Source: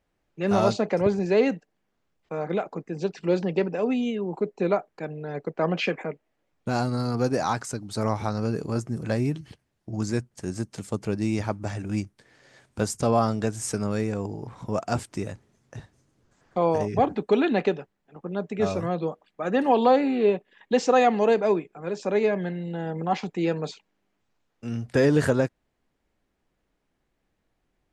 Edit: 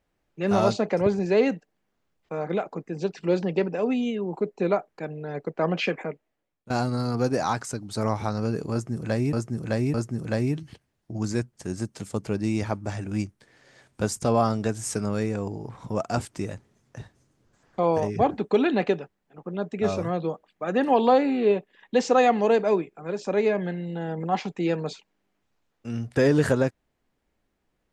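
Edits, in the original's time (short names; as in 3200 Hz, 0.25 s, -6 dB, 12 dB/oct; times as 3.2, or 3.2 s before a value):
6.06–6.7 fade out, to -21.5 dB
8.72–9.33 loop, 3 plays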